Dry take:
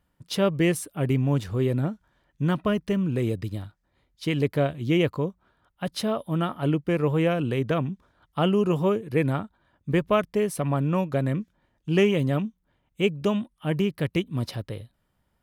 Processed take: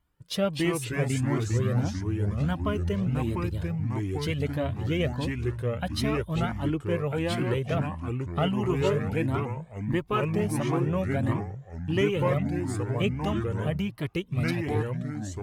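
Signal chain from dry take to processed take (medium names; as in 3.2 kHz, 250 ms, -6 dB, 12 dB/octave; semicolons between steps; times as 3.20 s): recorder AGC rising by 5.8 dB/s; ever faster or slower copies 195 ms, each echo -3 st, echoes 3; Shepard-style flanger rising 1.5 Hz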